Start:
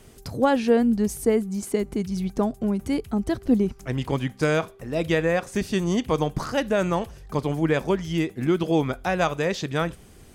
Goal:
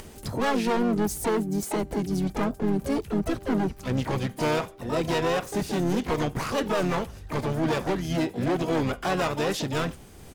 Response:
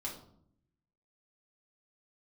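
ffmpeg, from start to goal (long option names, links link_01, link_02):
-filter_complex "[0:a]acompressor=mode=upward:threshold=-40dB:ratio=2.5,asoftclip=type=hard:threshold=-23.5dB,asplit=4[link_01][link_02][link_03][link_04];[link_02]asetrate=35002,aresample=44100,atempo=1.25992,volume=-9dB[link_05];[link_03]asetrate=66075,aresample=44100,atempo=0.66742,volume=-10dB[link_06];[link_04]asetrate=88200,aresample=44100,atempo=0.5,volume=-7dB[link_07];[link_01][link_05][link_06][link_07]amix=inputs=4:normalize=0"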